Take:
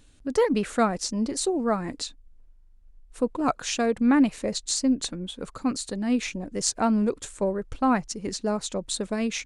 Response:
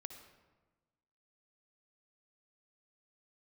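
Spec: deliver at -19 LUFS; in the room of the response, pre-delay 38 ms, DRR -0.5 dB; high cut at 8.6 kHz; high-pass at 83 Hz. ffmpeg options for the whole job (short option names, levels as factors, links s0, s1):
-filter_complex "[0:a]highpass=83,lowpass=8600,asplit=2[s0][s1];[1:a]atrim=start_sample=2205,adelay=38[s2];[s1][s2]afir=irnorm=-1:irlink=0,volume=1.78[s3];[s0][s3]amix=inputs=2:normalize=0,volume=1.58"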